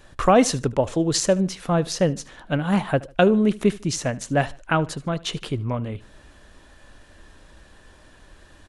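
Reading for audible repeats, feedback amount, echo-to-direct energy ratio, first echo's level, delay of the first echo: 2, 32%, −20.5 dB, −21.0 dB, 75 ms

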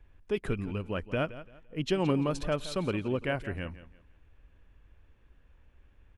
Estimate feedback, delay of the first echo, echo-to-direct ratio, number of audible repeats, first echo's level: 28%, 170 ms, −14.5 dB, 2, −15.0 dB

